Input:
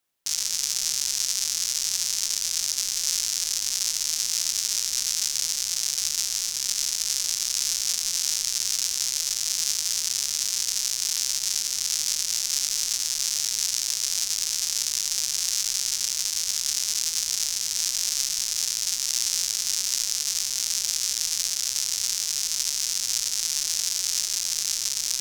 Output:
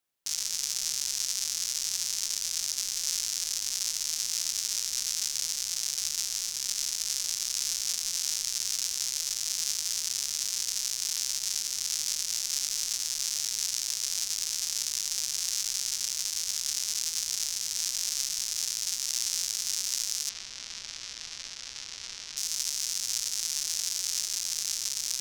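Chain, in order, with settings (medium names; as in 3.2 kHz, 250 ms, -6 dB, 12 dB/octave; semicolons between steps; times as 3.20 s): 20.29–22.37 s: low-pass 3.4 kHz 12 dB/octave; trim -5 dB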